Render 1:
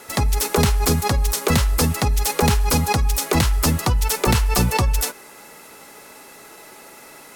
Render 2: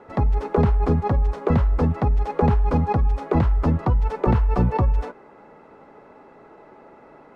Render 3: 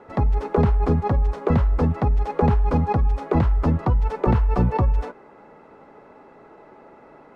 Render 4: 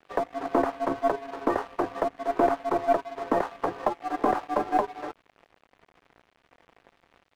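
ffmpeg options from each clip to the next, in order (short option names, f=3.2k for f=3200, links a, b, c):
-af "lowpass=1k"
-af anull
-af "highpass=f=530:t=q:w=0.5412,highpass=f=530:t=q:w=1.307,lowpass=f=2.1k:t=q:w=0.5176,lowpass=f=2.1k:t=q:w=0.7071,lowpass=f=2.1k:t=q:w=1.932,afreqshift=-140,aeval=exprs='sgn(val(0))*max(abs(val(0))-0.00501,0)':c=same,aeval=exprs='0.224*(cos(1*acos(clip(val(0)/0.224,-1,1)))-cos(1*PI/2))+0.00631*(cos(6*acos(clip(val(0)/0.224,-1,1)))-cos(6*PI/2))':c=same,volume=4dB"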